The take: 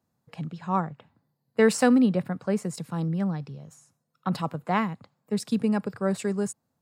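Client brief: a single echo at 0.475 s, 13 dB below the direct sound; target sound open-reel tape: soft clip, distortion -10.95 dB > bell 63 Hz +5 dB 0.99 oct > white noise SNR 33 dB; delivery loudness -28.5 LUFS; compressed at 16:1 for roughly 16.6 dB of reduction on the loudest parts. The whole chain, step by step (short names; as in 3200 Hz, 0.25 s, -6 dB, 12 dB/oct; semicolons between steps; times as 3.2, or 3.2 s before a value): compressor 16:1, threshold -32 dBFS; echo 0.475 s -13 dB; soft clip -34.5 dBFS; bell 63 Hz +5 dB 0.99 oct; white noise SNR 33 dB; gain +13.5 dB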